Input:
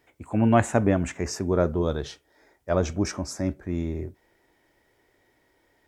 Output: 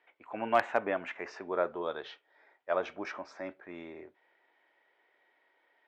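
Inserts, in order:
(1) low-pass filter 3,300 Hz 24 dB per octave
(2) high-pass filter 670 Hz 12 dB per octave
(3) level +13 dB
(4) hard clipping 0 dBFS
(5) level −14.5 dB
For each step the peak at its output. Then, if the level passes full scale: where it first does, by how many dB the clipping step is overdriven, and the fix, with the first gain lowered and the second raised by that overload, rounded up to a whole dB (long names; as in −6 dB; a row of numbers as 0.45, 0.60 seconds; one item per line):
−4.0, −8.0, +5.0, 0.0, −14.5 dBFS
step 3, 5.0 dB
step 3 +8 dB, step 5 −9.5 dB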